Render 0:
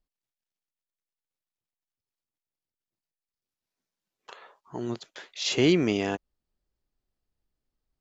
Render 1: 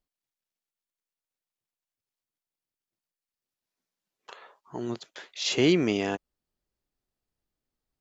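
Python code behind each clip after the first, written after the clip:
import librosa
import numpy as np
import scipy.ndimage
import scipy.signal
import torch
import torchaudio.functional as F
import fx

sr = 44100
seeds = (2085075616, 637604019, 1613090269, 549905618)

y = fx.low_shelf(x, sr, hz=66.0, db=-9.0)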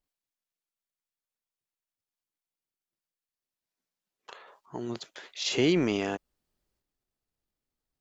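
y = fx.transient(x, sr, attack_db=3, sustain_db=8)
y = y * 10.0 ** (-3.5 / 20.0)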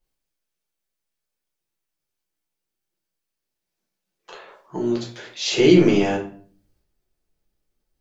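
y = fx.room_shoebox(x, sr, seeds[0], volume_m3=42.0, walls='mixed', distance_m=0.94)
y = y * 10.0 ** (2.0 / 20.0)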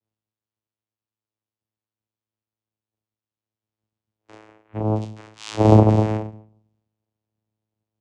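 y = fx.vocoder(x, sr, bands=4, carrier='saw', carrier_hz=108.0)
y = y * 10.0 ** (1.0 / 20.0)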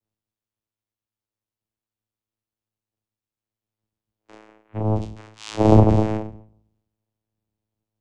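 y = fx.octave_divider(x, sr, octaves=1, level_db=-5.0)
y = y * 10.0 ** (-1.0 / 20.0)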